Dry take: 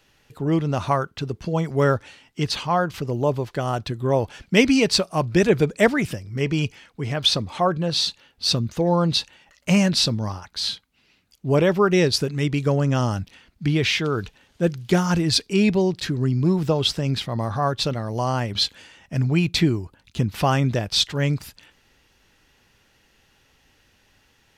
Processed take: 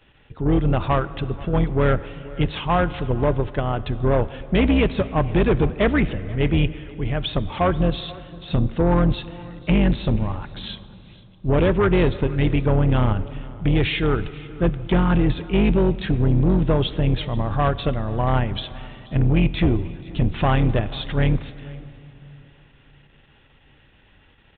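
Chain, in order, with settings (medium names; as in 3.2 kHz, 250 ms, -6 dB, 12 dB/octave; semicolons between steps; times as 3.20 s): octave divider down 2 oct, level -2 dB; de-esser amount 55%; bass shelf 440 Hz +2.5 dB; in parallel at +0.5 dB: level held to a coarse grid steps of 20 dB; on the sum: saturation -11 dBFS, distortion -12 dB; delay 483 ms -21.5 dB; on a send at -15.5 dB: reverberation RT60 3.4 s, pre-delay 3 ms; on the sum: resampled via 8 kHz; trim -1.5 dB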